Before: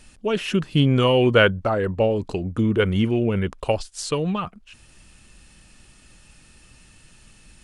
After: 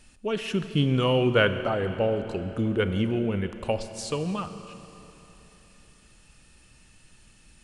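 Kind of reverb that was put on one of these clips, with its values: Schroeder reverb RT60 3.5 s, combs from 27 ms, DRR 9.5 dB; trim -5.5 dB

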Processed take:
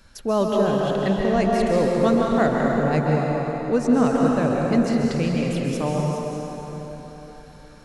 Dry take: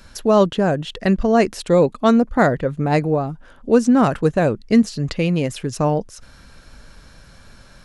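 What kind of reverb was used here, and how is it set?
plate-style reverb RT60 4 s, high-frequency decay 0.75×, pre-delay 120 ms, DRR -2.5 dB; trim -7.5 dB

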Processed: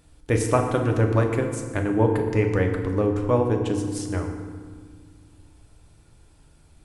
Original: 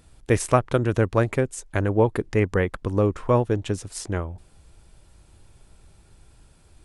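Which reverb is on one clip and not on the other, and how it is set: FDN reverb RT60 1.7 s, low-frequency decay 1.5×, high-frequency decay 0.6×, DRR 2.5 dB; trim -3 dB

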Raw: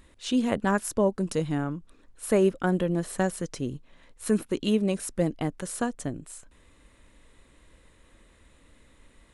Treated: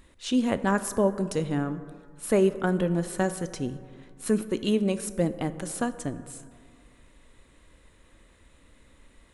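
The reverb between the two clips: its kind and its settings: plate-style reverb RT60 2.1 s, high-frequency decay 0.35×, DRR 12 dB

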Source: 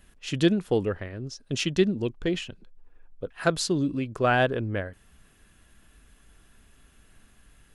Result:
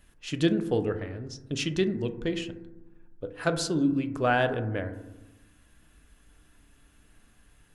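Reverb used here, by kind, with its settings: FDN reverb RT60 1 s, low-frequency decay 1.45×, high-frequency decay 0.25×, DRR 7.5 dB; trim -3 dB

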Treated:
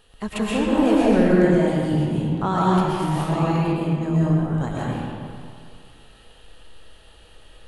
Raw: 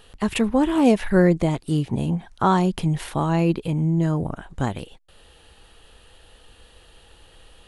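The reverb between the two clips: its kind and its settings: algorithmic reverb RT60 2.2 s, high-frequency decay 0.7×, pre-delay 85 ms, DRR -7 dB; trim -6.5 dB

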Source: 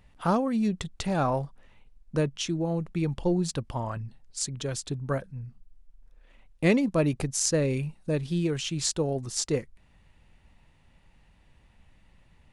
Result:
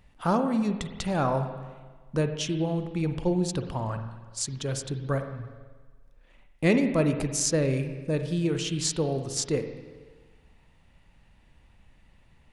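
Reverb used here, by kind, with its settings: spring tank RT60 1.4 s, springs 44/53 ms, chirp 50 ms, DRR 7 dB

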